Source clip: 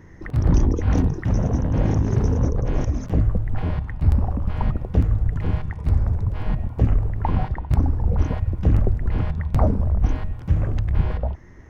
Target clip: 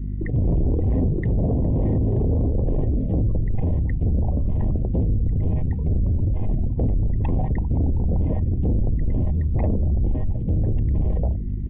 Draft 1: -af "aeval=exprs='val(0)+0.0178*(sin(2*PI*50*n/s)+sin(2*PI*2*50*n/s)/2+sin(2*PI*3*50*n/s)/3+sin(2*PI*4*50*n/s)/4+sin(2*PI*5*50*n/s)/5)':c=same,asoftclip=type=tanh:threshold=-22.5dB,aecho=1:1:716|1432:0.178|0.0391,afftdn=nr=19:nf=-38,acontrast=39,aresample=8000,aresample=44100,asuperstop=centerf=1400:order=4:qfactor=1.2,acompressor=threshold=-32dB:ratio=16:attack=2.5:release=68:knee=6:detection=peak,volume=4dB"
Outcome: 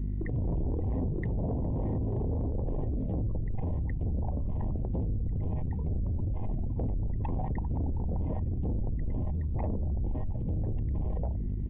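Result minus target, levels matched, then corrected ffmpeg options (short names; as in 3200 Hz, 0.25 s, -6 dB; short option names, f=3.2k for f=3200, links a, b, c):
compressor: peak gain reduction +11 dB; 1000 Hz band +5.5 dB
-af "aeval=exprs='val(0)+0.0178*(sin(2*PI*50*n/s)+sin(2*PI*2*50*n/s)/2+sin(2*PI*3*50*n/s)/3+sin(2*PI*4*50*n/s)/4+sin(2*PI*5*50*n/s)/5)':c=same,asoftclip=type=tanh:threshold=-22.5dB,aecho=1:1:716|1432:0.178|0.0391,afftdn=nr=19:nf=-38,acontrast=39,aresample=8000,aresample=44100,asuperstop=centerf=1400:order=4:qfactor=1.2,equalizer=f=910:w=2.4:g=-8.5,acompressor=threshold=-20.5dB:ratio=16:attack=2.5:release=68:knee=6:detection=peak,volume=4dB"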